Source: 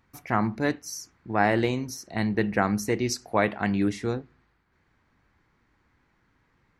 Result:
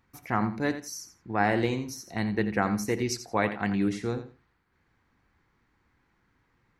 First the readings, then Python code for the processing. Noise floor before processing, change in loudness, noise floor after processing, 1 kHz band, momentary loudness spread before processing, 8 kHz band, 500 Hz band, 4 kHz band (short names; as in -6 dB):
-69 dBFS, -2.0 dB, -71 dBFS, -2.0 dB, 9 LU, -2.0 dB, -3.0 dB, -2.0 dB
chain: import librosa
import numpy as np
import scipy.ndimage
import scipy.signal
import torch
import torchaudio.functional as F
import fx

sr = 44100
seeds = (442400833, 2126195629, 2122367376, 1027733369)

p1 = fx.notch(x, sr, hz=620.0, q=15.0)
p2 = p1 + fx.echo_feedback(p1, sr, ms=86, feedback_pct=18, wet_db=-11.5, dry=0)
y = p2 * librosa.db_to_amplitude(-2.5)